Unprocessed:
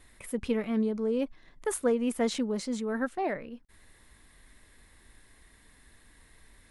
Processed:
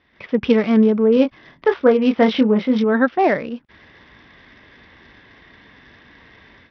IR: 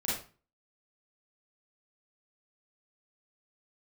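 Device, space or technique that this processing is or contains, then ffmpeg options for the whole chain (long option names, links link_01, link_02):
Bluetooth headset: -filter_complex "[0:a]asettb=1/sr,asplit=3[link_01][link_02][link_03];[link_01]atrim=end=1.144[link_04];[link_02]atrim=start=1.14:end=2.84,asetpts=PTS-STARTPTS,afade=type=in:duration=0.004:curve=qsin,afade=type=out:start_time=1.696:duration=0.004:curve=qsin,asplit=2[link_05][link_06];[link_06]adelay=23,volume=-6.5dB[link_07];[link_05][link_07]amix=inputs=2:normalize=0,atrim=end_sample=74970[link_08];[link_03]atrim=start=2.836[link_09];[link_04][link_08]acrossfade=duration=0.004:curve1=hsin:curve2=qsin[link_10];[link_10][link_09]acrossfade=duration=0.004:curve1=qsin:curve2=hsin,highpass=110,dynaudnorm=framelen=130:gausssize=3:maxgain=15dB,aresample=8000,aresample=44100" -ar 44100 -c:a sbc -b:a 64k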